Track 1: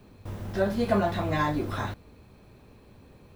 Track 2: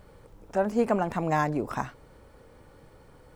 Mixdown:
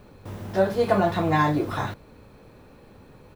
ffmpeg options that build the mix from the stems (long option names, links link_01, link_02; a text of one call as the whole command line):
ffmpeg -i stem1.wav -i stem2.wav -filter_complex "[0:a]highpass=98,volume=2.5dB[link_01];[1:a]lowpass=frequency=2100:width=0.5412,lowpass=frequency=2100:width=1.3066,adelay=0.4,volume=0dB[link_02];[link_01][link_02]amix=inputs=2:normalize=0" out.wav